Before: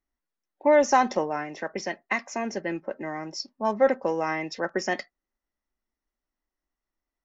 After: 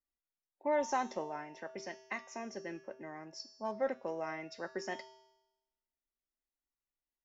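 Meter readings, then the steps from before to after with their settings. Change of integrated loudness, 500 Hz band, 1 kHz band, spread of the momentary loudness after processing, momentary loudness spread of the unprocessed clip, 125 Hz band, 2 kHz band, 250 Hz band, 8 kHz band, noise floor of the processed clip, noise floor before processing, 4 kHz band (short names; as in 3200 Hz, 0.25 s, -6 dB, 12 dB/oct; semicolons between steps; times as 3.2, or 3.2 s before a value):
-13.0 dB, -13.0 dB, -12.5 dB, 13 LU, 13 LU, -13.5 dB, -13.5 dB, -13.5 dB, n/a, under -85 dBFS, under -85 dBFS, -12.0 dB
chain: resonator 130 Hz, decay 0.94 s, harmonics odd, mix 80%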